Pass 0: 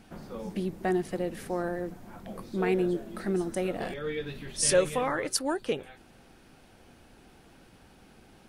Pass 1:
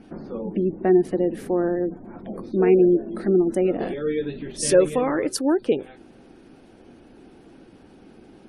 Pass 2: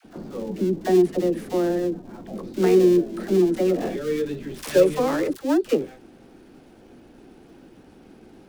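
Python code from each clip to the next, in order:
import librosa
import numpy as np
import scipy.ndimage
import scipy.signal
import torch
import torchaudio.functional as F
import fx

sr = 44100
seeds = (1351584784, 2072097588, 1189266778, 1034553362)

y1 = fx.spec_gate(x, sr, threshold_db=-30, keep='strong')
y1 = fx.peak_eq(y1, sr, hz=320.0, db=12.5, octaves=1.6)
y2 = fx.dead_time(y1, sr, dead_ms=0.11)
y2 = fx.dispersion(y2, sr, late='lows', ms=55.0, hz=530.0)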